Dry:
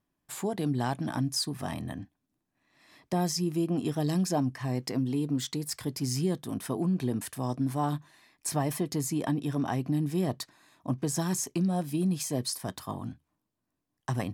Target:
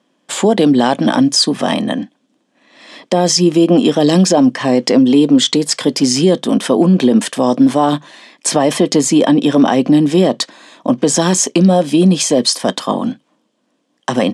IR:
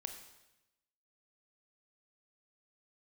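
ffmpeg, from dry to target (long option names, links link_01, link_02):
-af "highpass=frequency=200:width=0.5412,highpass=frequency=200:width=1.3066,equalizer=frequency=220:width_type=q:width=4:gain=5,equalizer=frequency=530:width_type=q:width=4:gain=10,equalizer=frequency=3200:width_type=q:width=4:gain=8,lowpass=frequency=8400:width=0.5412,lowpass=frequency=8400:width=1.3066,alimiter=level_in=20.5dB:limit=-1dB:release=50:level=0:latency=1,volume=-1dB"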